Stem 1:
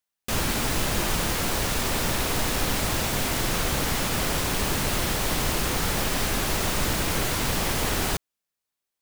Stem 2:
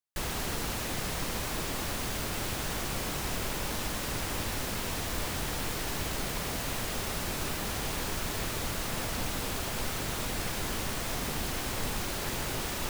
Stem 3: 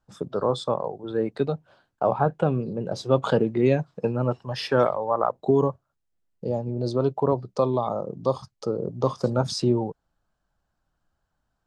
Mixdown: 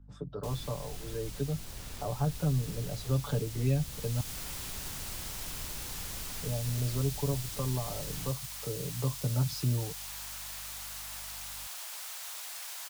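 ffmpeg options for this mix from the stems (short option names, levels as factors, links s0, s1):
-filter_complex "[0:a]adelay=150,volume=0.133[s0];[1:a]highpass=f=730:w=0.5412,highpass=f=730:w=1.3066,highshelf=f=4600:g=6,adelay=2150,volume=0.398,afade=t=in:st=3.75:d=0.58:silence=0.375837[s1];[2:a]lowpass=f=2500:p=1,aecho=1:1:6.9:0.9,aeval=exprs='val(0)+0.00355*(sin(2*PI*50*n/s)+sin(2*PI*2*50*n/s)/2+sin(2*PI*3*50*n/s)/3+sin(2*PI*4*50*n/s)/4+sin(2*PI*5*50*n/s)/5)':c=same,volume=0.501,asplit=3[s2][s3][s4];[s2]atrim=end=4.21,asetpts=PTS-STARTPTS,afade=t=out:st=4.206:d=0.004:c=hsin[s5];[s3]atrim=start=4.21:end=6.09,asetpts=PTS-STARTPTS,volume=0[s6];[s4]atrim=start=6.09,asetpts=PTS-STARTPTS,afade=t=in:d=0.004:c=hsin[s7];[s5][s6][s7]concat=n=3:v=0:a=1[s8];[s0][s1][s8]amix=inputs=3:normalize=0,lowshelf=f=170:g=3.5,acrossover=split=160|3000[s9][s10][s11];[s10]acompressor=threshold=0.00141:ratio=1.5[s12];[s9][s12][s11]amix=inputs=3:normalize=0"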